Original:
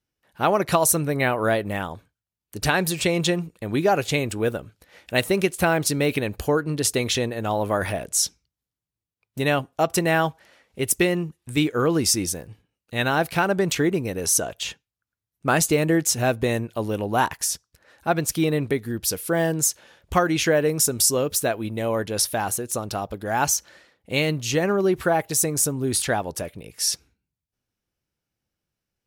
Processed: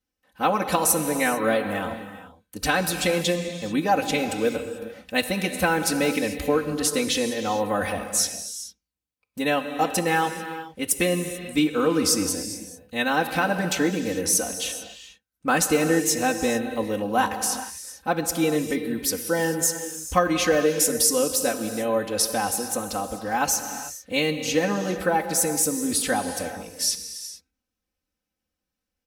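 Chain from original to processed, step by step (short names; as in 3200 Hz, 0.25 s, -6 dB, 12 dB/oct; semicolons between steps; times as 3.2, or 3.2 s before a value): comb 3.9 ms, depth 100%; non-linear reverb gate 0.47 s flat, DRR 7.5 dB; gain -4 dB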